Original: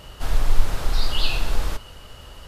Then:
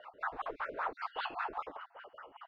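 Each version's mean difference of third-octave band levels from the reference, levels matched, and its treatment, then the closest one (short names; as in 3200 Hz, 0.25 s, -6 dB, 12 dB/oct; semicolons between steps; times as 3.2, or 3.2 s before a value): 19.5 dB: random spectral dropouts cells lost 36%; three-band isolator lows -20 dB, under 490 Hz, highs -21 dB, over 3000 Hz; wah 5.1 Hz 270–1500 Hz, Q 3.6; gain +8.5 dB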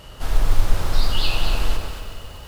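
2.5 dB: companded quantiser 8-bit; on a send: echo with dull and thin repeats by turns 0.117 s, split 1300 Hz, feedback 56%, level -2 dB; on the sum: lo-fi delay 94 ms, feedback 80%, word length 7-bit, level -13 dB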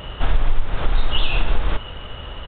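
11.5 dB: compressor 5:1, threshold -20 dBFS, peak gain reduction 13.5 dB; downsampling 8000 Hz; gain +9 dB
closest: second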